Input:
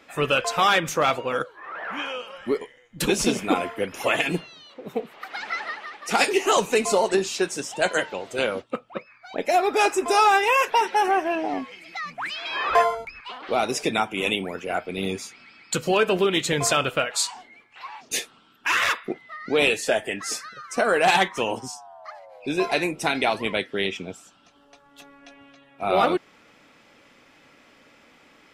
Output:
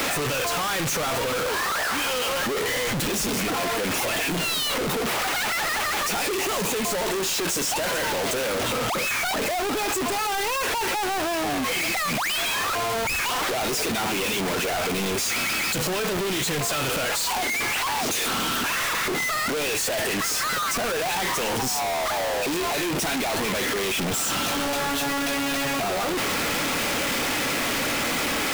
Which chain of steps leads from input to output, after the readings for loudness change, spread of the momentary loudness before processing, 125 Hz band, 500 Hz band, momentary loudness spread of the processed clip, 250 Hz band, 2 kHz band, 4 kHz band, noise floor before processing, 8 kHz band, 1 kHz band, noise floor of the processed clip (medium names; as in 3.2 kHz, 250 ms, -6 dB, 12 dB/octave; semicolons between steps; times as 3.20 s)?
0.0 dB, 15 LU, +3.0 dB, -2.5 dB, 1 LU, +0.5 dB, +1.5 dB, +4.0 dB, -56 dBFS, +6.0 dB, -2.0 dB, -25 dBFS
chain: one-bit comparator